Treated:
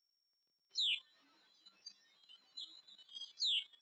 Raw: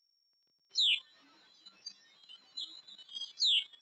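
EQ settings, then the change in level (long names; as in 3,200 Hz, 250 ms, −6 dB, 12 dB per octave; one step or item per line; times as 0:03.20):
low-shelf EQ 98 Hz −7.5 dB
−7.5 dB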